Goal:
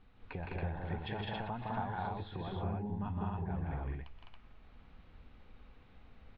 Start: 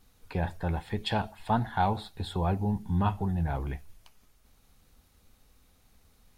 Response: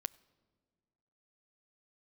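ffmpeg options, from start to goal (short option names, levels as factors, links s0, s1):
-filter_complex "[0:a]lowpass=f=3000:w=0.5412,lowpass=f=3000:w=1.3066,acompressor=threshold=0.00631:ratio=3,asplit=2[s0][s1];[s1]aecho=0:1:125.4|163.3|207|277:0.282|0.794|0.891|0.891[s2];[s0][s2]amix=inputs=2:normalize=0"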